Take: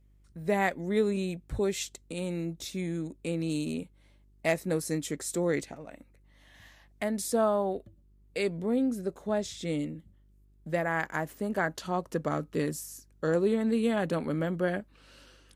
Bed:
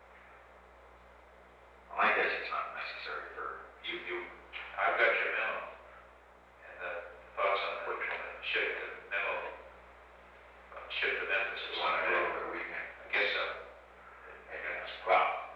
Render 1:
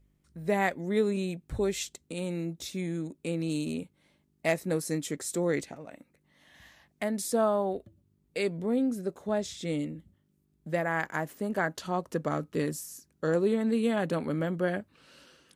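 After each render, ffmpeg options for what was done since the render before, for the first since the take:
-af "bandreject=f=50:t=h:w=4,bandreject=f=100:t=h:w=4"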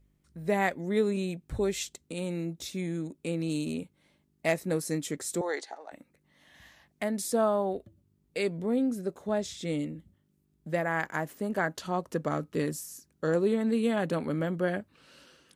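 -filter_complex "[0:a]asettb=1/sr,asplit=3[s0][s1][s2];[s0]atrim=end=5.414[s3];[s1]atrim=start=5.41:end=5.92,asetpts=PTS-STARTPTS,afade=t=in:d=0.004:c=qsin,afade=t=out:st=0.506:d=0.004:c=qsin,highpass=f=420:w=0.5412,highpass=f=420:w=1.3066,equalizer=f=540:t=q:w=4:g=-5,equalizer=f=820:t=q:w=4:g=10,equalizer=f=1700:t=q:w=4:g=4,equalizer=f=2500:t=q:w=4:g=-10,equalizer=f=4300:t=q:w=4:g=6,equalizer=f=8100:t=q:w=4:g=-5,lowpass=f=9500:w=0.5412,lowpass=f=9500:w=1.3066[s4];[s2]atrim=start=5.916[s5];[s3][s4]acrossfade=d=0.004:c1=hsin:c2=qsin[s6];[s6][s5]acrossfade=d=0.004:c1=qsin:c2=hsin"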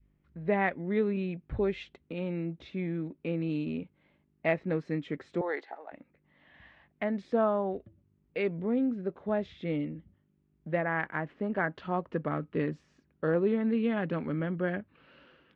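-af "lowpass=f=2800:w=0.5412,lowpass=f=2800:w=1.3066,adynamicequalizer=threshold=0.01:dfrequency=660:dqfactor=0.93:tfrequency=660:tqfactor=0.93:attack=5:release=100:ratio=0.375:range=3:mode=cutabove:tftype=bell"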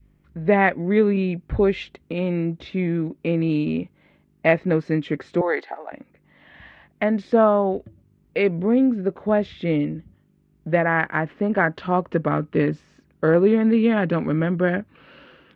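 -af "volume=3.35"

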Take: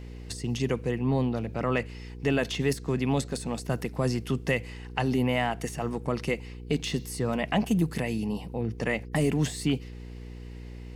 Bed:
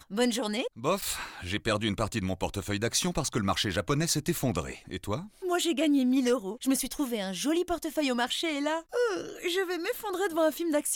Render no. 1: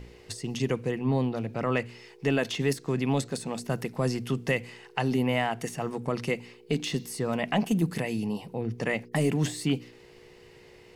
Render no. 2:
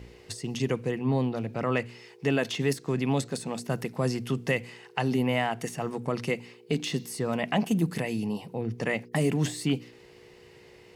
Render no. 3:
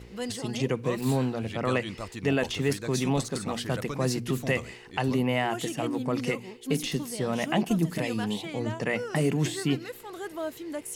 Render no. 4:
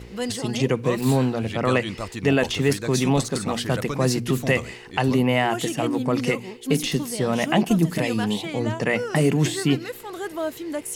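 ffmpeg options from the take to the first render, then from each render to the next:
-af "bandreject=f=60:t=h:w=4,bandreject=f=120:t=h:w=4,bandreject=f=180:t=h:w=4,bandreject=f=240:t=h:w=4,bandreject=f=300:t=h:w=4"
-af "highpass=44"
-filter_complex "[1:a]volume=0.398[s0];[0:a][s0]amix=inputs=2:normalize=0"
-af "volume=2"

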